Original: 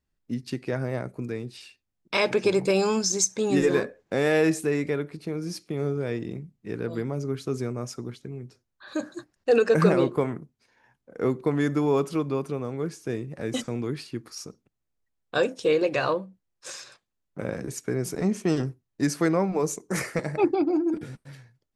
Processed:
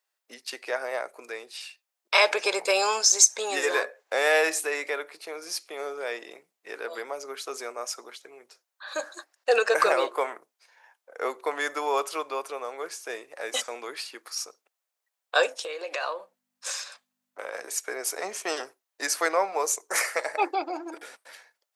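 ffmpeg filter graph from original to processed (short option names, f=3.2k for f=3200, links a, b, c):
-filter_complex "[0:a]asettb=1/sr,asplit=3[a][b][c];[a]atrim=end=15.594[d];[b]atrim=start=15.59:end=17.54,asetpts=PTS-STARTPTS,afade=t=in:d=0.004:c=qsin,afade=t=out:st=1.946:d=0.004:c=qsin,equalizer=f=150:t=o:w=0.3:g=-13.5,acompressor=threshold=-29dB:ratio=12:attack=3.2:release=140:knee=1:detection=peak,aeval=exprs='val(0)+0.00398*(sin(2*PI*50*n/s)+sin(2*PI*2*50*n/s)/2+sin(2*PI*3*50*n/s)/3+sin(2*PI*4*50*n/s)/4+sin(2*PI*5*50*n/s)/5)':c=same[e];[c]atrim=start=17.536[f];[d][e]acrossfade=d=0.004:c1=hsin:c2=qsin[g];[g][f]acrossfade=d=0.004:c1=qsin:c2=hsin,highpass=f=590:w=0.5412,highpass=f=590:w=1.3066,highshelf=f=9.7k:g=5,volume=5.5dB"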